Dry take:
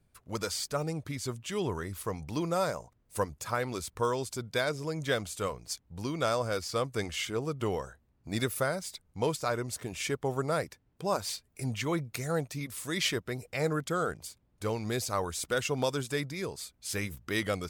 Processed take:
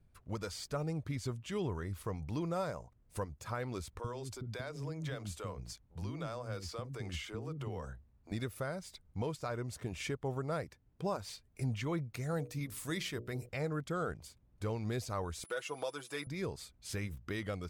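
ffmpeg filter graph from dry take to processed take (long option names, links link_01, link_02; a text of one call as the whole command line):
ffmpeg -i in.wav -filter_complex "[0:a]asettb=1/sr,asplit=3[link_01][link_02][link_03];[link_01]atrim=end=3.994[link_04];[link_02]atrim=start=3.99:end=8.32,asetpts=PTS-STARTPTS,afade=type=in:duration=0.004:curve=qsin,afade=type=out:start_time=4.326:duration=0.004:curve=qsin,acompressor=threshold=-34dB:ratio=12:attack=3.2:release=140:knee=1:detection=peak,acrossover=split=320[link_05][link_06];[link_05]adelay=50[link_07];[link_07][link_06]amix=inputs=2:normalize=0,atrim=end_sample=190953[link_08];[link_03]atrim=start=8.316[link_09];[link_04][link_08]acrossfade=duration=0.004:curve1=hsin:curve2=qsin[link_10];[link_10][link_09]acrossfade=duration=0.004:curve1=qsin:curve2=hsin,asettb=1/sr,asplit=3[link_11][link_12][link_13];[link_11]atrim=end=12.314[link_14];[link_12]atrim=start=12.31:end=13.49,asetpts=PTS-STARTPTS,afade=type=in:duration=0.004:curve=qsin,afade=type=out:start_time=1.176:duration=0.004:curve=qsin,highshelf=frequency=8600:gain=10,bandreject=frequency=60:width_type=h:width=6,bandreject=frequency=120:width_type=h:width=6,bandreject=frequency=180:width_type=h:width=6,bandreject=frequency=240:width_type=h:width=6,bandreject=frequency=300:width_type=h:width=6,bandreject=frequency=360:width_type=h:width=6,bandreject=frequency=420:width_type=h:width=6,bandreject=frequency=480:width_type=h:width=6,bandreject=frequency=540:width_type=h:width=6,bandreject=frequency=600:width_type=h:width=6[link_15];[link_13]atrim=start=13.486[link_16];[link_14][link_15]acrossfade=duration=0.004:curve1=hsin:curve2=qsin[link_17];[link_17][link_16]acrossfade=duration=0.004:curve1=qsin:curve2=hsin,asettb=1/sr,asplit=3[link_18][link_19][link_20];[link_18]atrim=end=15.444[link_21];[link_19]atrim=start=15.44:end=16.27,asetpts=PTS-STARTPTS,afade=type=in:duration=0.004:curve=qsin,afade=type=out:start_time=0.826:duration=0.004:curve=qsin,aecho=1:1:6.1:0.65,atrim=end_sample=36603,aeval=exprs='val(0)+0.00501*sin(2*PI*10000*n/s)':channel_layout=same,highpass=430[link_22];[link_20]atrim=start=16.266[link_23];[link_21][link_22]acrossfade=duration=0.004:curve1=hsin:curve2=qsin[link_24];[link_24][link_23]acrossfade=duration=0.004:curve1=qsin:curve2=hsin,lowshelf=frequency=140:gain=9,alimiter=limit=-23dB:level=0:latency=1:release=472,highshelf=frequency=5100:gain=-8.5,volume=-3dB" out.wav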